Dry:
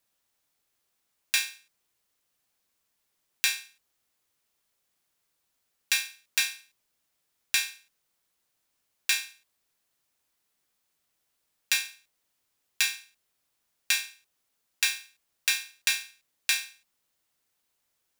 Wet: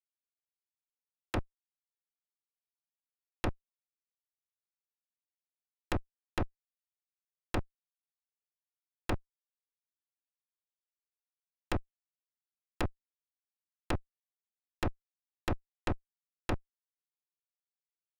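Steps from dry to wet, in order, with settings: Schmitt trigger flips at -17 dBFS; treble ducked by the level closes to 1300 Hz, closed at -39.5 dBFS; gain +7.5 dB

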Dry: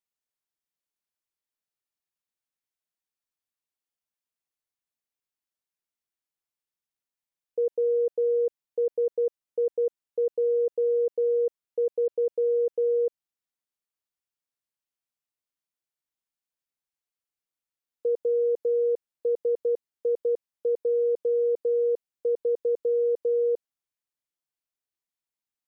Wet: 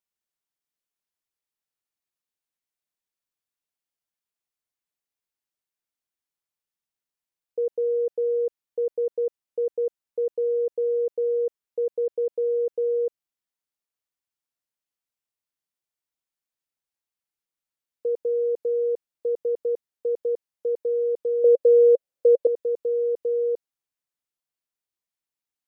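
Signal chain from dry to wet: 21.44–22.47 bell 540 Hz +14 dB 0.53 oct

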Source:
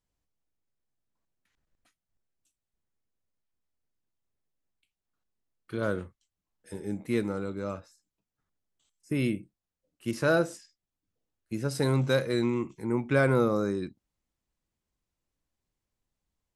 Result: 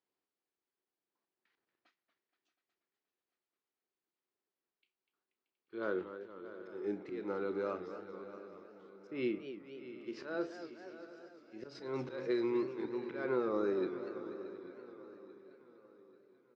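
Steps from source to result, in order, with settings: speaker cabinet 360–7200 Hz, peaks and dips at 370 Hz +8 dB, 610 Hz -4 dB, 4700 Hz +5 dB; compressor 6:1, threshold -29 dBFS, peak gain reduction 10 dB; auto swell 0.207 s; air absorption 230 m; doubler 32 ms -13.5 dB; swung echo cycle 0.838 s, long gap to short 3:1, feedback 42%, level -15 dB; warbling echo 0.24 s, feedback 64%, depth 179 cents, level -11 dB

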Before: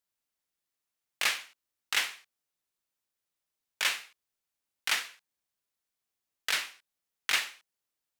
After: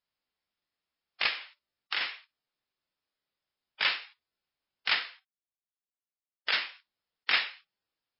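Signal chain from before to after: 1.26–2.01 compressor 4:1, threshold -30 dBFS, peak gain reduction 7 dB; 4.95–6.64 gate -53 dBFS, range -18 dB; gain +2 dB; MP3 16 kbps 12000 Hz

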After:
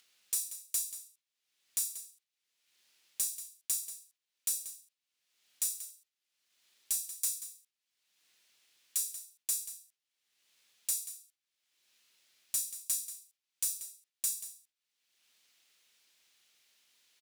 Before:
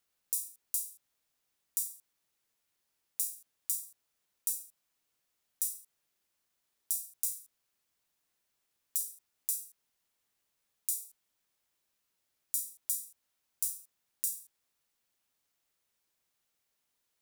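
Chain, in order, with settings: gate -57 dBFS, range -19 dB; weighting filter D; upward compressor, threshold -50 dBFS; soft clip -22 dBFS, distortion -10 dB; on a send: echo 0.185 s -13 dB

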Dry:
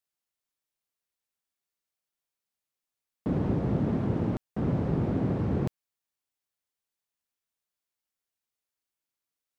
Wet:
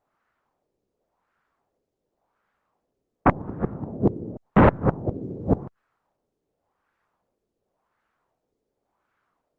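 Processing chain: LFO low-pass sine 0.9 Hz 400–1500 Hz; flipped gate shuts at -18 dBFS, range -31 dB; sine folder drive 11 dB, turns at -16.5 dBFS; gain +7 dB; Opus 24 kbps 48000 Hz

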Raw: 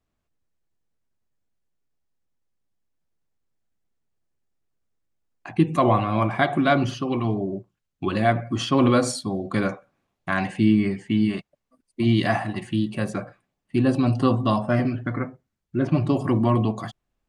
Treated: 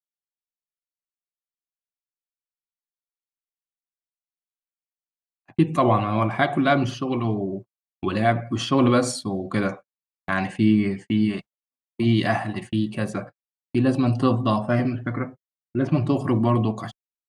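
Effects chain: gate -35 dBFS, range -45 dB

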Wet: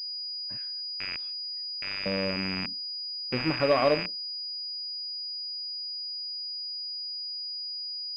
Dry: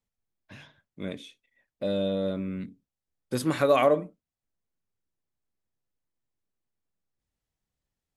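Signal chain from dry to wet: rattling part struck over -40 dBFS, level -15 dBFS; 0.57–2.06 HPF 1300 Hz 24 dB/oct; pulse-width modulation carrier 4900 Hz; gain -2 dB

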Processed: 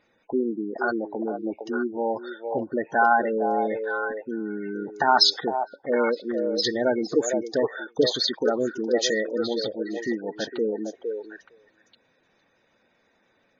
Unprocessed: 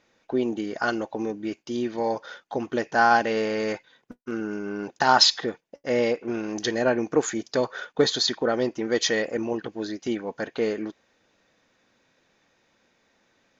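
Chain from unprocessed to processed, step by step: spectral gate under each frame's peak -15 dB strong; delay with a stepping band-pass 0.459 s, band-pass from 560 Hz, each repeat 1.4 oct, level -3 dB

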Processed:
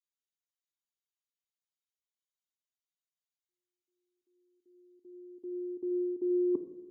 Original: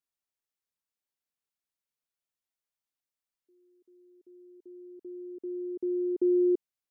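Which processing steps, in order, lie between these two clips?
per-bin expansion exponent 2; reverse; compressor 4:1, threshold -41 dBFS, peak gain reduction 15 dB; reverse; reverb RT60 1.1 s, pre-delay 3 ms, DRR 9 dB; gain -5 dB

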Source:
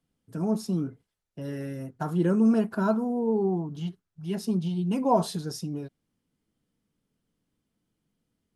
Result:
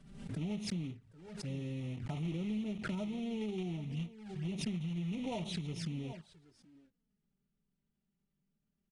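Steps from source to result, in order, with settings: block floating point 3-bit; tone controls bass +8 dB, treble -7 dB; notch 1100 Hz, Q 8.9; on a send: echo 0.742 s -20.5 dB; on the sum: compressor 6:1, threshold -27 dBFS, peak gain reduction 13.5 dB; dynamic EQ 2600 Hz, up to +8 dB, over -57 dBFS, Q 0.9; envelope flanger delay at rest 5 ms, full sweep at -29 dBFS; varispeed -4%; downsampling 22050 Hz; backwards sustainer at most 61 dB/s; gain -8.5 dB

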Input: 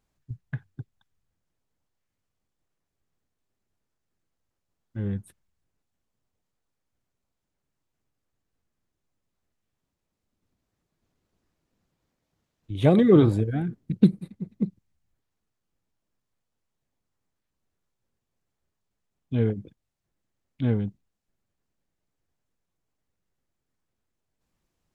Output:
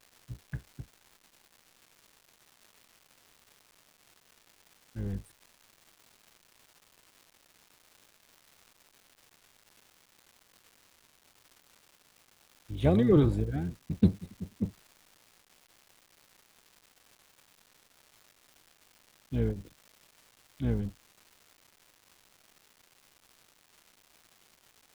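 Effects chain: octaver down 1 oct, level -5 dB; crackle 510/s -40 dBFS; gain -6.5 dB

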